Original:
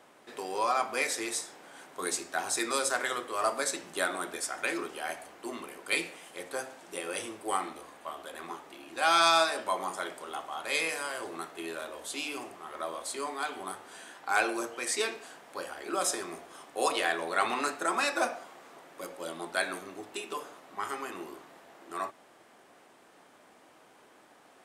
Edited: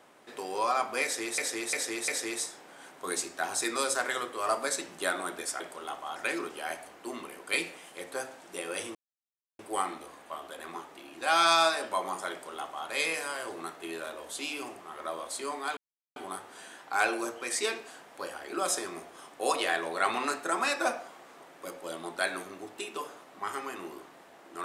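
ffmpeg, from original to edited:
-filter_complex "[0:a]asplit=8[a][b][c][d][e][f][g][h];[a]atrim=end=1.382[i];[b]atrim=start=1.028:end=1.382[j];[c]atrim=start=1.028:end=1.382[k];[d]atrim=start=1.028:end=4.552[l];[e]atrim=start=10.058:end=10.622[m];[f]atrim=start=4.548:end=7.34,asetpts=PTS-STARTPTS,afade=t=out:st=2.788:d=0.004:c=hsin,apad=pad_dur=0.64[n];[g]atrim=start=7.34:end=13.52,asetpts=PTS-STARTPTS,afade=t=in:d=0.004:c=hsin,afade=t=out:st=6.176:d=0.004:c=hsin,apad=pad_dur=0.39[o];[h]atrim=start=13.52,asetpts=PTS-STARTPTS,afade=t=in:d=0.004:c=hsin[p];[i][j]acrossfade=d=0.004:c1=hsin:c2=hsin[q];[q][k]acrossfade=d=0.004:c1=hsin:c2=hsin[r];[r][l]acrossfade=d=0.004:c1=hsin:c2=hsin[s];[s][m]acrossfade=d=0.004:c1=hsin:c2=hsin[t];[n][o][p]concat=n=3:v=0:a=1[u];[t][u]acrossfade=d=0.004:c1=hsin:c2=hsin"

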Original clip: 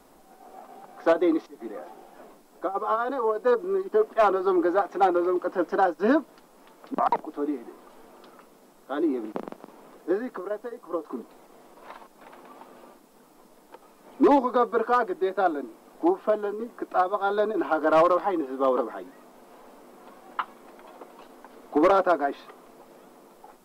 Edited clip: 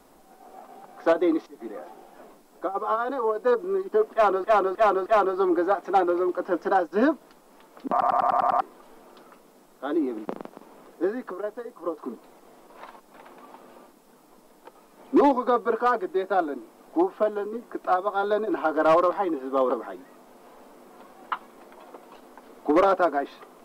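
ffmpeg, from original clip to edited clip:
-filter_complex "[0:a]asplit=11[a][b][c][d][e][f][g][h][i][j][k];[a]atrim=end=4.442[l];[b]atrim=start=4.128:end=4.442[m];[c]atrim=start=4.128:end=4.442[n];[d]atrim=start=4.128:end=7.092[o];[e]atrim=start=6.988:end=7.092[p];[f]atrim=start=6.988:end=7.092[q];[g]atrim=start=6.988:end=7.092[r];[h]atrim=start=6.988:end=7.092[s];[i]atrim=start=6.988:end=7.092[t];[j]atrim=start=6.988:end=7.092[u];[k]atrim=start=7.688[v];[l][m]acrossfade=d=0.004:c1=hsin:c2=hsin[w];[w][n]acrossfade=d=0.004:c1=hsin:c2=hsin[x];[x][o]acrossfade=d=0.004:c1=hsin:c2=hsin[y];[y][p]acrossfade=d=0.004:c1=hsin:c2=hsin[z];[z][q]acrossfade=d=0.004:c1=hsin:c2=hsin[aa];[aa][r]acrossfade=d=0.004:c1=hsin:c2=hsin[ab];[ab][s]acrossfade=d=0.004:c1=hsin:c2=hsin[ac];[ac][t]acrossfade=d=0.004:c1=hsin:c2=hsin[ad];[ad][u]acrossfade=d=0.004:c1=hsin:c2=hsin[ae];[ae][v]acrossfade=d=0.004:c1=hsin:c2=hsin"

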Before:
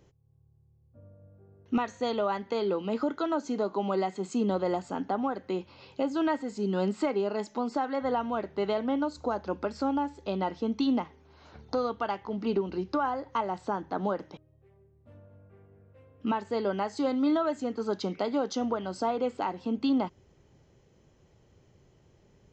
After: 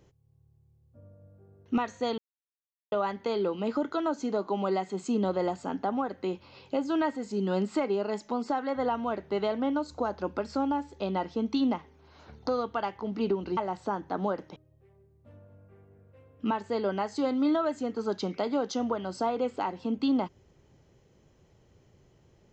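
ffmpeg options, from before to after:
-filter_complex "[0:a]asplit=3[a][b][c];[a]atrim=end=2.18,asetpts=PTS-STARTPTS,afade=t=out:st=2.176:d=0.004:c=hsin,apad=pad_dur=0.74[d];[b]atrim=start=2.18:end=12.832,asetpts=PTS-STARTPTS,afade=t=in:d=0.004:c=hsin[e];[c]atrim=start=13.378[f];[d][e]concat=n=2:v=0:a=1[g];[g][f]acrossfade=d=0.004:c1=hsin:c2=hsin"

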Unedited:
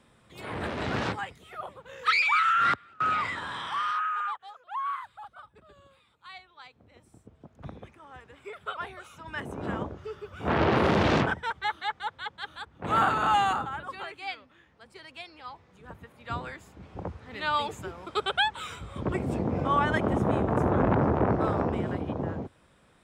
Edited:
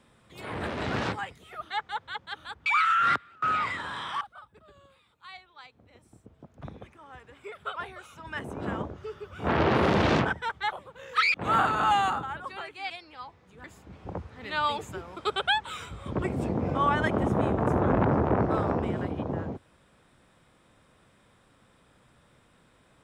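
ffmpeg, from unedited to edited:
-filter_complex "[0:a]asplit=8[a][b][c][d][e][f][g][h];[a]atrim=end=1.622[i];[b]atrim=start=11.728:end=12.772[j];[c]atrim=start=2.238:end=3.792[k];[d]atrim=start=5.218:end=11.732[l];[e]atrim=start=1.618:end=2.242[m];[f]atrim=start=12.768:end=14.332[n];[g]atrim=start=15.158:end=15.902[o];[h]atrim=start=16.538[p];[i][j]acrossfade=d=0.004:c1=hsin:c2=hsin[q];[q][k]acrossfade=d=0.004:c1=hsin:c2=hsin[r];[r][l]acrossfade=d=0.004:c1=hsin:c2=hsin[s];[s][m]acrossfade=d=0.004:c1=hsin:c2=hsin[t];[t][n]acrossfade=d=0.004:c1=hsin:c2=hsin[u];[u][o]acrossfade=d=0.004:c1=hsin:c2=hsin[v];[v][p]acrossfade=d=0.004:c1=hsin:c2=hsin"

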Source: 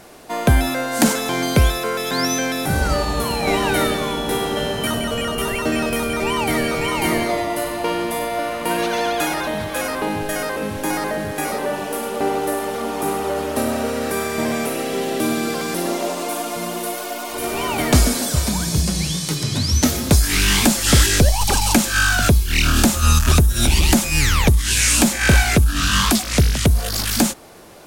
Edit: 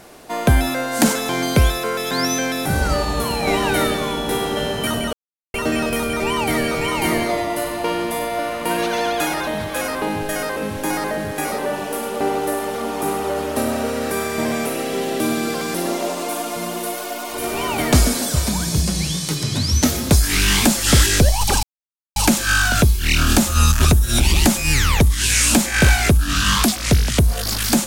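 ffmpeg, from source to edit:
-filter_complex "[0:a]asplit=4[a][b][c][d];[a]atrim=end=5.13,asetpts=PTS-STARTPTS,afade=t=out:st=5.126:d=0.004:c=hsin[e];[b]atrim=start=5.13:end=5.54,asetpts=PTS-STARTPTS,volume=0[f];[c]atrim=start=5.54:end=21.63,asetpts=PTS-STARTPTS,afade=t=in:d=0.004:c=hsin,afade=t=out:st=16.086:d=0.004:c=hsin,apad=pad_dur=0.53[g];[d]atrim=start=21.63,asetpts=PTS-STARTPTS,afade=t=in:d=0.004:c=hsin[h];[e][f][g][h]concat=n=4:v=0:a=1"

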